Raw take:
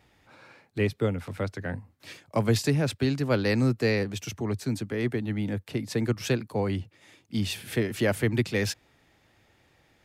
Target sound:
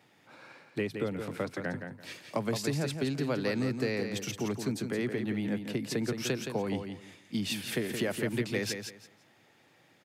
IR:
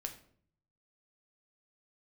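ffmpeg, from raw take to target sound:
-af "highpass=f=130:w=0.5412,highpass=f=130:w=1.3066,acompressor=threshold=-28dB:ratio=6,aecho=1:1:170|340|510:0.447|0.0983|0.0216"

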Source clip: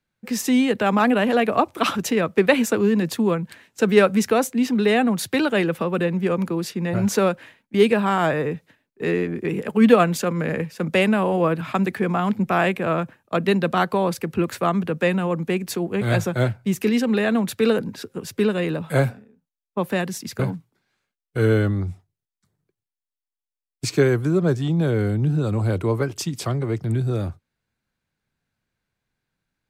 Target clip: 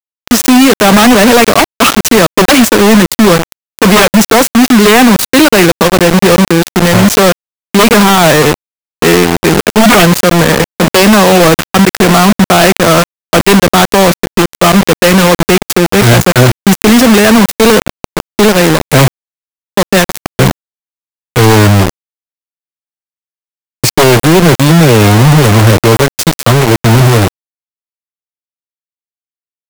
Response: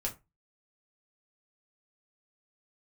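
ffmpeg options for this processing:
-filter_complex "[0:a]acrusher=bits=3:mix=0:aa=0.000001,asettb=1/sr,asplit=3[a][b][c];[a]atrim=end=14.144[d];[b]atrim=start=14.14:end=14.6,asetpts=PTS-STARTPTS,afade=t=in:d=0.004:c=qsin,afade=t=out:st=0.456:d=0.004:c=qsin,aeval=exprs='0.299*(cos(1*acos(clip(val(0)/0.299,-1,1)))-cos(1*PI/2))+0.0473*(cos(8*acos(clip(val(0)/0.299,-1,1)))-cos(8*PI/2))':c=same[e];[c]atrim=start=14.596[f];[d][e]acrossfade=d=0.004:c1=hsin:c2=qsin[g];[g][f]acrossfade=d=0.004:c1=qsin:c2=hsin,aeval=exprs='0.75*sin(PI/2*3.98*val(0)/0.75)':c=same,volume=1.5dB"

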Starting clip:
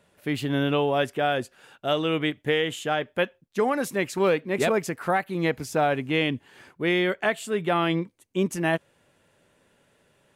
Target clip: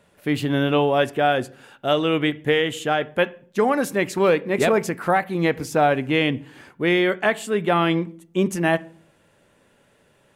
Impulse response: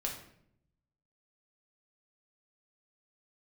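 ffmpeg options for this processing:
-filter_complex "[0:a]asplit=2[a][b];[1:a]atrim=start_sample=2205,asetrate=66150,aresample=44100,lowpass=2.9k[c];[b][c]afir=irnorm=-1:irlink=0,volume=-10dB[d];[a][d]amix=inputs=2:normalize=0,volume=3dB"

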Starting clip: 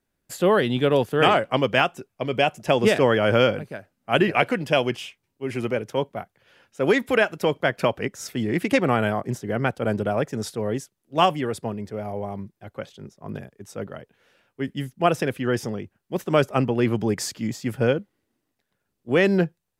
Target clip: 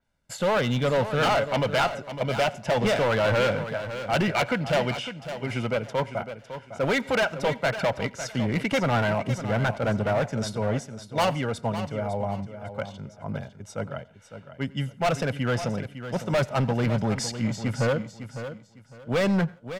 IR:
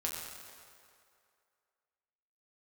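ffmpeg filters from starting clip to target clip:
-filter_complex "[0:a]lowpass=7.6k,equalizer=f=1k:t=o:w=0.24:g=8,bandreject=f=740:w=12,aecho=1:1:1.4:0.62,volume=19.5dB,asoftclip=hard,volume=-19.5dB,aecho=1:1:555|1110|1665:0.282|0.0705|0.0176,asplit=2[a][b];[1:a]atrim=start_sample=2205,atrim=end_sample=3969,adelay=88[c];[b][c]afir=irnorm=-1:irlink=0,volume=-23dB[d];[a][d]amix=inputs=2:normalize=0,adynamicequalizer=threshold=0.00794:dfrequency=5100:dqfactor=0.7:tfrequency=5100:tqfactor=0.7:attack=5:release=100:ratio=0.375:range=2:mode=cutabove:tftype=highshelf"

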